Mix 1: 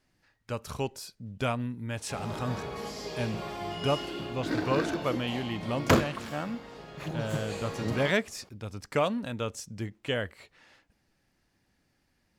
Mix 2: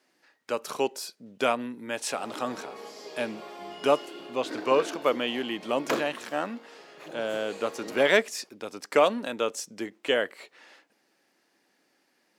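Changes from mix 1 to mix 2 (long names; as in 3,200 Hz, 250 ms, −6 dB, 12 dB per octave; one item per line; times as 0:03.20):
speech +10.5 dB
master: add four-pole ladder high-pass 250 Hz, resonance 20%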